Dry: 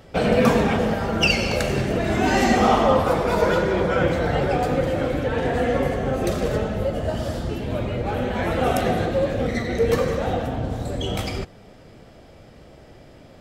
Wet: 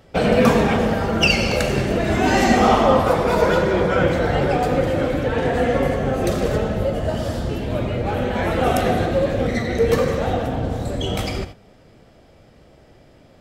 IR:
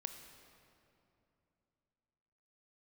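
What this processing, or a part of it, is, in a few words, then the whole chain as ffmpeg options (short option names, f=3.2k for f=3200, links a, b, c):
keyed gated reverb: -filter_complex "[0:a]asplit=3[a][b][c];[1:a]atrim=start_sample=2205[d];[b][d]afir=irnorm=-1:irlink=0[e];[c]apad=whole_len=591254[f];[e][f]sidechaingate=range=-33dB:threshold=-36dB:ratio=16:detection=peak,volume=3dB[g];[a][g]amix=inputs=2:normalize=0,volume=-3.5dB"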